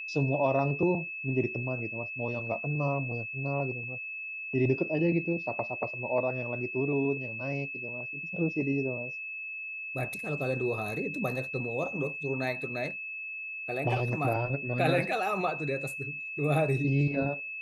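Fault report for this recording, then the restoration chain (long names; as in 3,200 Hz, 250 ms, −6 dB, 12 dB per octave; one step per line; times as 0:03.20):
whistle 2,600 Hz −36 dBFS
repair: notch filter 2,600 Hz, Q 30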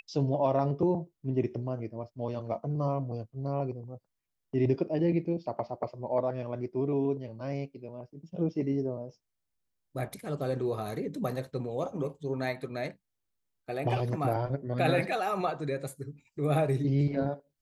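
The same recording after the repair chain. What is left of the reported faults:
none of them is left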